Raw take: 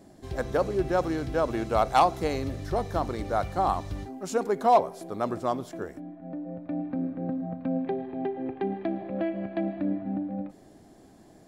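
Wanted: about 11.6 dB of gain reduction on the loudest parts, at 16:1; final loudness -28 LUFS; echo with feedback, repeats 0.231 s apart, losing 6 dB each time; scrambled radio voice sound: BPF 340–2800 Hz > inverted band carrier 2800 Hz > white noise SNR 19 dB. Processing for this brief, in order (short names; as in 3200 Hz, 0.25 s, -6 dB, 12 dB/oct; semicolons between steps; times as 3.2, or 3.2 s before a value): compressor 16:1, threshold -26 dBFS; BPF 340–2800 Hz; feedback echo 0.231 s, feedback 50%, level -6 dB; inverted band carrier 2800 Hz; white noise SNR 19 dB; gain +3.5 dB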